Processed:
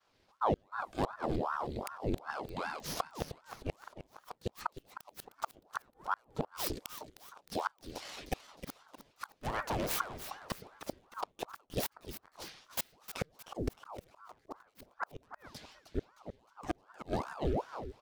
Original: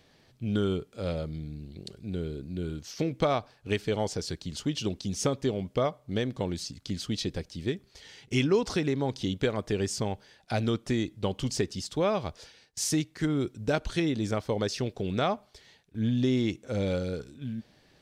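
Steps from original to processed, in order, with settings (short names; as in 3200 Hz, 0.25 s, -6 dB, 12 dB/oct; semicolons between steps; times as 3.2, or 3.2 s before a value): tracing distortion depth 0.48 ms; de-hum 322.6 Hz, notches 5; expander -52 dBFS; 2.3–2.86 weighting filter A; compressor 12:1, threshold -28 dBFS, peak gain reduction 10 dB; 9.38–9.91 overloaded stage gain 34.5 dB; 14.44–15.23 dispersion highs, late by 67 ms, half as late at 530 Hz; flipped gate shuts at -25 dBFS, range -39 dB; on a send: feedback echo 0.309 s, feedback 41%, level -11 dB; on the sum: ring modulator with a swept carrier 700 Hz, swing 80%, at 2.6 Hz; gain +6 dB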